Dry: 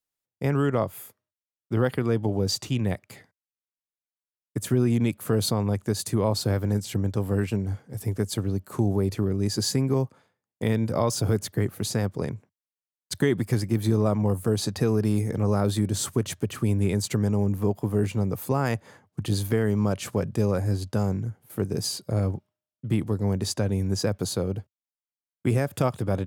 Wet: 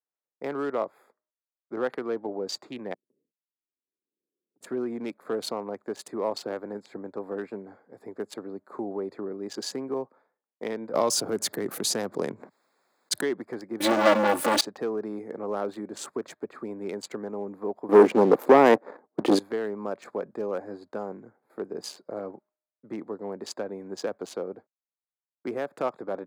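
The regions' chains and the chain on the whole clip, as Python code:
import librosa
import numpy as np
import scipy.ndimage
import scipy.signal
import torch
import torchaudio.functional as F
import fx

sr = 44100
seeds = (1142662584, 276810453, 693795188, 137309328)

y = fx.chain(x, sr, fx.cheby2_bandstop(low_hz=730.0, high_hz=6300.0, order=4, stop_db=40),
    fx.auto_swell(attack_ms=557.0),
    fx.band_squash(depth_pct=100), at=(2.94, 4.61))
y = fx.chain(y, sr, fx.bass_treble(bass_db=7, treble_db=8),
    fx.env_flatten(amount_pct=50), at=(10.94, 13.21))
y = fx.chain(y, sr, fx.leveller(passes=5),
    fx.comb(ms=3.5, depth=0.88), at=(13.8, 14.61))
y = fx.chain(y, sr, fx.highpass(hz=82.0, slope=6),
    fx.peak_eq(hz=340.0, db=13.5, octaves=2.8),
    fx.leveller(passes=2), at=(17.89, 19.39))
y = fx.wiener(y, sr, points=15)
y = scipy.signal.sosfilt(scipy.signal.bessel(4, 420.0, 'highpass', norm='mag', fs=sr, output='sos'), y)
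y = fx.peak_eq(y, sr, hz=14000.0, db=-10.5, octaves=1.7)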